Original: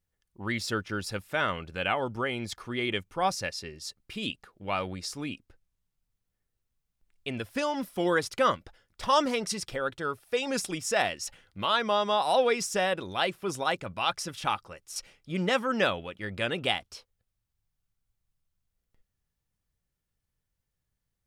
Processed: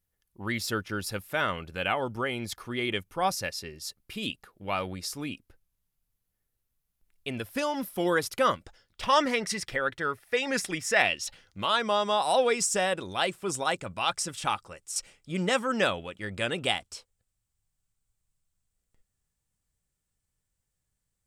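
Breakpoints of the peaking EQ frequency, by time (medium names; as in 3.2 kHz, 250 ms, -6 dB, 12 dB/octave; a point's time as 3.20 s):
peaking EQ +11 dB 0.5 oct
8.52 s 12 kHz
9.15 s 1.9 kHz
10.94 s 1.9 kHz
11.64 s 8 kHz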